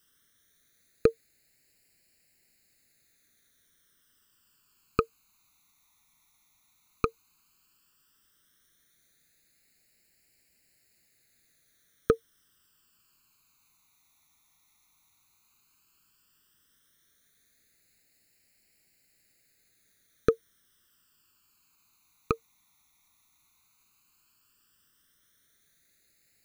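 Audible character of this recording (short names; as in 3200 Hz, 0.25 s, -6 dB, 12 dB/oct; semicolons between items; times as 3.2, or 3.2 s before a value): a quantiser's noise floor 12-bit, dither triangular; phasing stages 12, 0.12 Hz, lowest notch 520–1100 Hz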